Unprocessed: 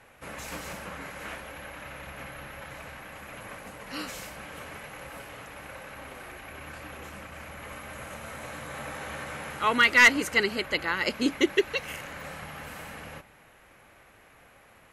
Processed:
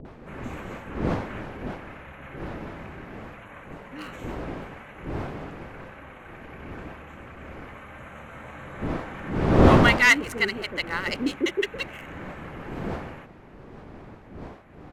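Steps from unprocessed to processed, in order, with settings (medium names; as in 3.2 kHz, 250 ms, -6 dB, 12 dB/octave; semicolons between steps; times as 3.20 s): local Wiener filter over 9 samples; wind noise 500 Hz -29 dBFS; bands offset in time lows, highs 50 ms, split 530 Hz; upward compressor, threshold -46 dBFS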